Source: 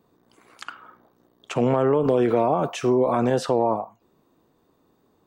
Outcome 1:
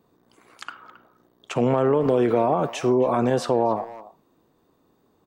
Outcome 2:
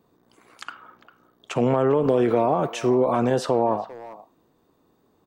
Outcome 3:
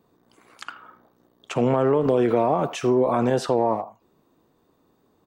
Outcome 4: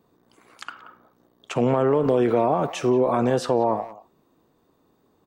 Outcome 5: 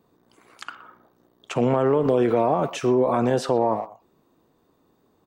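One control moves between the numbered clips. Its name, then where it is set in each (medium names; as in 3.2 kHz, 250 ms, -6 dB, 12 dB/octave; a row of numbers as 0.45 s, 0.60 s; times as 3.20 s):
speakerphone echo, time: 270 ms, 400 ms, 80 ms, 180 ms, 120 ms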